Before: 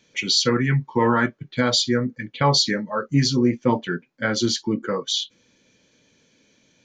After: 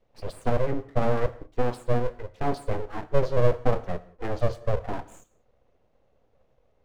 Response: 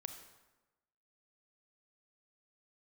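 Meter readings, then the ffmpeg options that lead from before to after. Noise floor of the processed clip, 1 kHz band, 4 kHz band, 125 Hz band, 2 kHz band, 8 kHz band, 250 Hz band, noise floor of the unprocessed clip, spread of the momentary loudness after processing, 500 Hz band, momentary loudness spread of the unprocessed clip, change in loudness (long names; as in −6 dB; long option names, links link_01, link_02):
−67 dBFS, −6.5 dB, −26.5 dB, −5.0 dB, −13.0 dB, below −20 dB, −12.5 dB, −63 dBFS, 11 LU, −1.5 dB, 7 LU, −7.5 dB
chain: -filter_complex "[0:a]bandpass=frequency=270:width_type=q:width=2:csg=0,aeval=exprs='abs(val(0))':channel_layout=same,asplit=2[link_01][link_02];[1:a]atrim=start_sample=2205,afade=type=out:start_time=0.26:duration=0.01,atrim=end_sample=11907[link_03];[link_02][link_03]afir=irnorm=-1:irlink=0,volume=-1dB[link_04];[link_01][link_04]amix=inputs=2:normalize=0"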